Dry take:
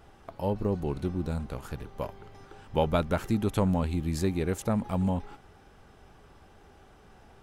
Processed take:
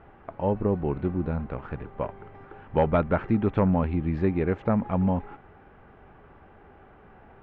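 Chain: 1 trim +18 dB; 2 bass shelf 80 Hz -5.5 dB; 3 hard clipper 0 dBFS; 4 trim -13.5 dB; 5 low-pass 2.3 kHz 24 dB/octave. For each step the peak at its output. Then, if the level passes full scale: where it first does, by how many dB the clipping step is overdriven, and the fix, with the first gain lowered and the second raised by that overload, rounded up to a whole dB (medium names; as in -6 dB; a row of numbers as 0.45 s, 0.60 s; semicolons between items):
+5.5 dBFS, +6.0 dBFS, 0.0 dBFS, -13.5 dBFS, -12.5 dBFS; step 1, 6.0 dB; step 1 +12 dB, step 4 -7.5 dB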